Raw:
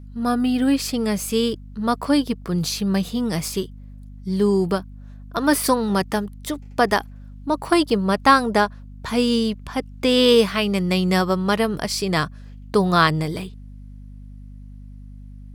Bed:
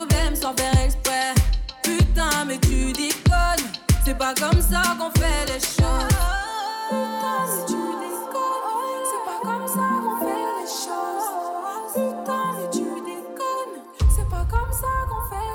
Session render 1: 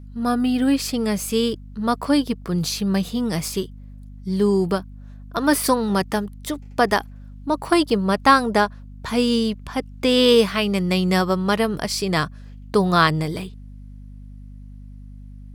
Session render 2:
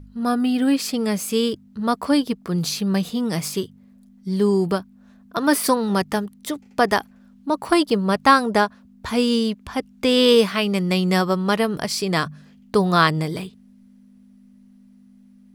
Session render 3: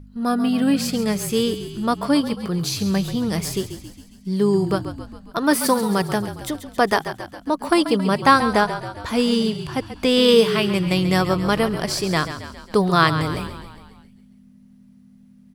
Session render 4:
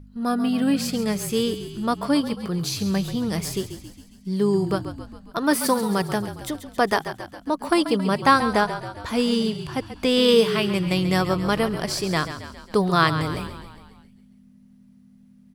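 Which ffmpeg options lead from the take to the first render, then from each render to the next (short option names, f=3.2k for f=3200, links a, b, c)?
-af anull
-af "bandreject=f=50:t=h:w=4,bandreject=f=100:t=h:w=4,bandreject=f=150:t=h:w=4"
-filter_complex "[0:a]asplit=8[a][b][c][d][e][f][g][h];[b]adelay=136,afreqshift=-38,volume=-11dB[i];[c]adelay=272,afreqshift=-76,volume=-15.7dB[j];[d]adelay=408,afreqshift=-114,volume=-20.5dB[k];[e]adelay=544,afreqshift=-152,volume=-25.2dB[l];[f]adelay=680,afreqshift=-190,volume=-29.9dB[m];[g]adelay=816,afreqshift=-228,volume=-34.7dB[n];[h]adelay=952,afreqshift=-266,volume=-39.4dB[o];[a][i][j][k][l][m][n][o]amix=inputs=8:normalize=0"
-af "volume=-2.5dB"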